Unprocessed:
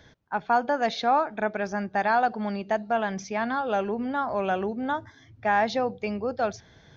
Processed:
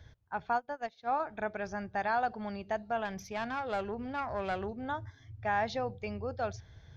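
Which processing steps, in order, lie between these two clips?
3.05–4.82 s: self-modulated delay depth 0.096 ms; resonant low shelf 140 Hz +11.5 dB, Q 1.5; 0.53–1.20 s: upward expansion 2.5:1, over -36 dBFS; trim -7.5 dB

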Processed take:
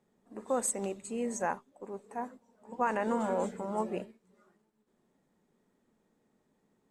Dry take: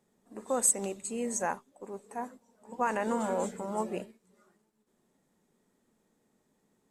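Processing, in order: treble shelf 5.2 kHz -10.5 dB

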